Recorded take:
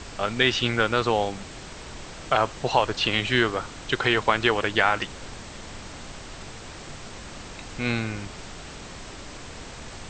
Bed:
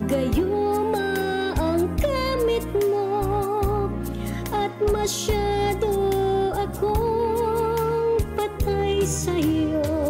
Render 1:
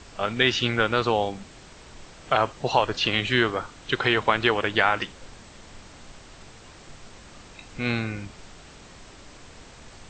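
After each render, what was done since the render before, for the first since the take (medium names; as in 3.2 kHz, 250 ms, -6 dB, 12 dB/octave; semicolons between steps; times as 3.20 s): noise print and reduce 7 dB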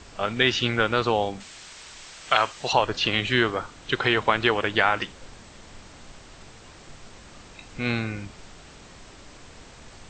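1.40–2.73 s: tilt shelf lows -8.5 dB, about 930 Hz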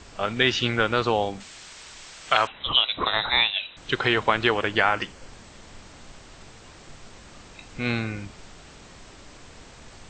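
2.47–3.77 s: frequency inversion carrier 3.9 kHz; 4.69–5.30 s: band-stop 3.7 kHz, Q 7.9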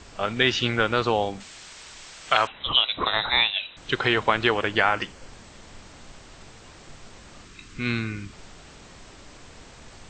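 7.45–8.33 s: high-order bell 670 Hz -12 dB 1.1 oct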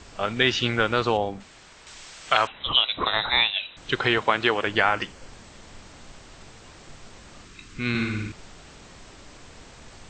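1.17–1.87 s: treble shelf 2.2 kHz -10 dB; 4.18–4.67 s: high-pass 170 Hz 6 dB/octave; 7.89–8.32 s: flutter echo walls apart 9.7 m, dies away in 0.9 s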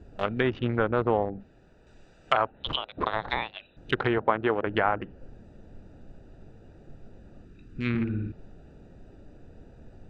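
local Wiener filter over 41 samples; low-pass that closes with the level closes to 1.2 kHz, closed at -21 dBFS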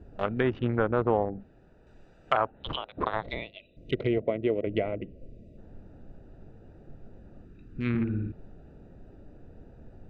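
3.23–5.58 s: time-frequency box 710–1900 Hz -21 dB; treble shelf 2.6 kHz -10 dB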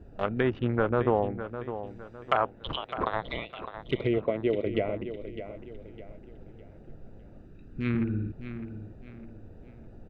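feedback delay 607 ms, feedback 37%, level -11 dB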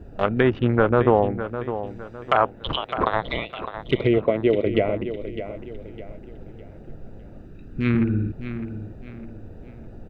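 trim +7.5 dB; peak limiter -3 dBFS, peak gain reduction 3 dB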